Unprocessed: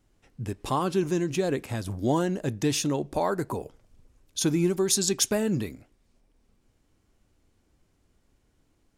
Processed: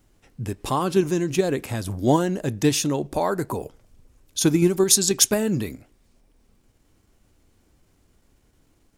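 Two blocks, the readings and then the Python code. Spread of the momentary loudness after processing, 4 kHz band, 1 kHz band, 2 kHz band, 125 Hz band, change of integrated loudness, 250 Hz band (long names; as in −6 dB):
15 LU, +5.5 dB, +4.0 dB, +4.0 dB, +4.0 dB, +5.0 dB, +4.5 dB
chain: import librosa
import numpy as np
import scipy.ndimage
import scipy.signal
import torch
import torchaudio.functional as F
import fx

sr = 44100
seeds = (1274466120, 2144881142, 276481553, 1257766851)

p1 = fx.high_shelf(x, sr, hz=11000.0, db=7.0)
p2 = fx.level_steps(p1, sr, step_db=23)
p3 = p1 + F.gain(torch.from_numpy(p2), -3.0).numpy()
y = F.gain(torch.from_numpy(p3), 2.5).numpy()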